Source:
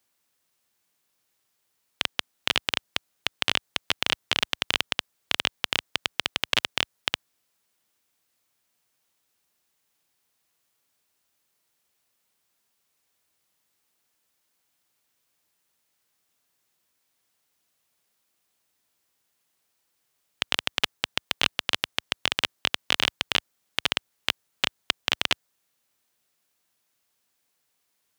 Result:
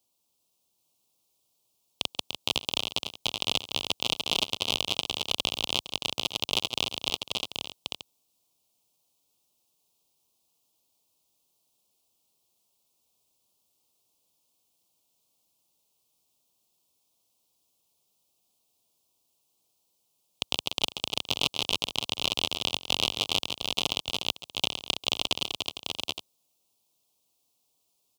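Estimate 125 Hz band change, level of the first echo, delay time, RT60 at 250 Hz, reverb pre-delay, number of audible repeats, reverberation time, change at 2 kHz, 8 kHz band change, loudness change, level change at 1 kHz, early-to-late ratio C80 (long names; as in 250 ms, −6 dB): +1.5 dB, −18.0 dB, 137 ms, no reverb audible, no reverb audible, 5, no reverb audible, −7.0 dB, +1.0 dB, −2.0 dB, −2.5 dB, no reverb audible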